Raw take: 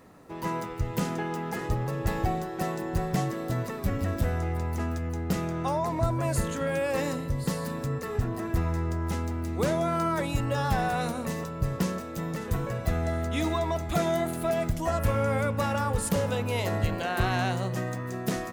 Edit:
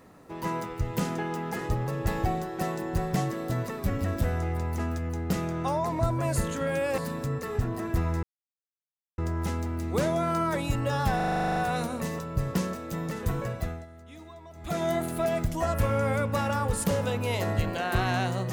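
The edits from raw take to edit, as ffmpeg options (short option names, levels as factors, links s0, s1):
-filter_complex "[0:a]asplit=15[s0][s1][s2][s3][s4][s5][s6][s7][s8][s9][s10][s11][s12][s13][s14];[s0]atrim=end=6.982[s15];[s1]atrim=start=7.578:end=8.83,asetpts=PTS-STARTPTS,afade=t=out:st=1.248:d=0.004:c=hsin,apad=pad_dur=0.95[s16];[s2]atrim=start=8.83:end=10.852,asetpts=PTS-STARTPTS,afade=t=in:d=0.004:c=hsin[s17];[s3]atrim=start=10.808:end=10.852[s18];[s4]atrim=start=10.808:end=10.852[s19];[s5]atrim=start=10.808:end=10.852[s20];[s6]atrim=start=10.808:end=10.852[s21];[s7]atrim=start=10.808:end=10.852[s22];[s8]atrim=start=10.808:end=10.852[s23];[s9]atrim=start=10.808:end=10.852[s24];[s10]atrim=start=10.808:end=10.852[s25];[s11]atrim=start=10.808:end=10.852[s26];[s12]atrim=start=10.808:end=13.11,asetpts=PTS-STARTPTS,afade=t=out:st=1.902:d=0.4:silence=0.112202[s27];[s13]atrim=start=13.11:end=13.77,asetpts=PTS-STARTPTS,volume=0.112[s28];[s14]atrim=start=13.77,asetpts=PTS-STARTPTS,afade=t=in:d=0.4:silence=0.112202[s29];[s16][s17]concat=n=2:v=0:a=1[s30];[s15][s30]acrossfade=d=0.004:c1=hsin:c2=hsin[s31];[s31][s18]acrossfade=d=0.004:c1=hsin:c2=hsin[s32];[s32][s19]acrossfade=d=0.004:c1=hsin:c2=hsin[s33];[s33][s20]acrossfade=d=0.004:c1=hsin:c2=hsin[s34];[s34][s21]acrossfade=d=0.004:c1=hsin:c2=hsin[s35];[s35][s22]acrossfade=d=0.004:c1=hsin:c2=hsin[s36];[s36][s23]acrossfade=d=0.004:c1=hsin:c2=hsin[s37];[s37][s24]acrossfade=d=0.004:c1=hsin:c2=hsin[s38];[s38][s25]acrossfade=d=0.004:c1=hsin:c2=hsin[s39];[s39][s26]acrossfade=d=0.004:c1=hsin:c2=hsin[s40];[s27][s28][s29]concat=n=3:v=0:a=1[s41];[s40][s41]acrossfade=d=0.004:c1=hsin:c2=hsin"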